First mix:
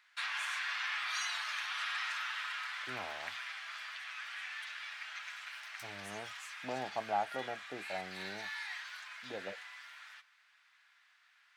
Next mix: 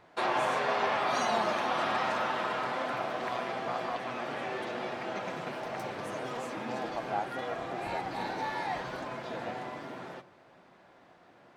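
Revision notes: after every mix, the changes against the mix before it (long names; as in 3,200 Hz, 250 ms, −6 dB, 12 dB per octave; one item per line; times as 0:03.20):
first voice: remove elliptic high-pass filter 1,500 Hz, stop band 50 dB
background: remove inverse Chebyshev high-pass filter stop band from 350 Hz, stop band 70 dB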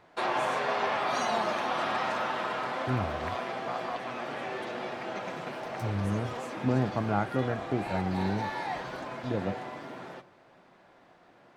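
second voice: remove resonant band-pass 770 Hz, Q 3.2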